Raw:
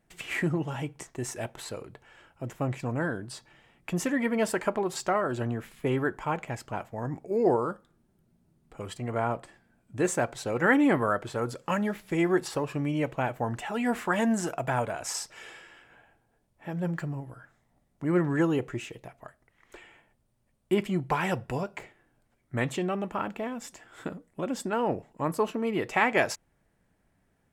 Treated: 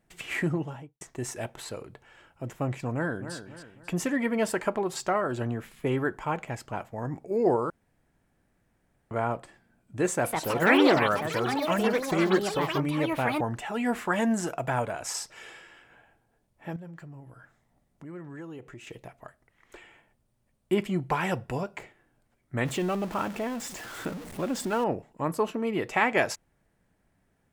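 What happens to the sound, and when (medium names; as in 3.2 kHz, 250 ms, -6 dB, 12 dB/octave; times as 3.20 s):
0.51–1.01 s: studio fade out
2.93–3.35 s: echo throw 270 ms, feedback 40%, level -10 dB
7.70–9.11 s: room tone
10.06–14.28 s: ever faster or slower copies 186 ms, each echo +5 st, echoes 3
16.76–18.87 s: compression 2.5:1, threshold -47 dBFS
22.65–24.84 s: jump at every zero crossing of -37 dBFS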